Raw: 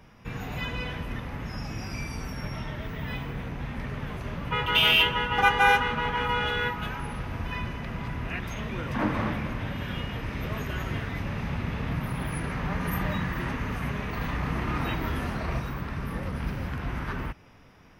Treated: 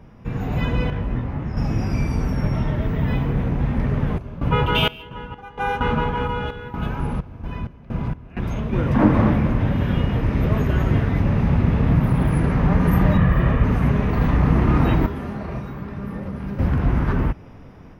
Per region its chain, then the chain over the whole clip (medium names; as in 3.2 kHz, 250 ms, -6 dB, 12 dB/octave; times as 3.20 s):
0.90–1.57 s: low-pass 3.6 kHz 6 dB/octave + detune thickener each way 22 cents
4.18–8.73 s: band-stop 1.9 kHz, Q 9.2 + random-step tremolo 4.3 Hz, depth 95%
13.17–13.64 s: high-order bell 7.4 kHz -9.5 dB + comb 1.7 ms, depth 49%
15.06–16.59 s: high-pass 110 Hz 6 dB/octave + feedback comb 200 Hz, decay 0.28 s, mix 70%
whole clip: tilt shelf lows +7.5 dB, about 1.1 kHz; level rider gain up to 4.5 dB; trim +2 dB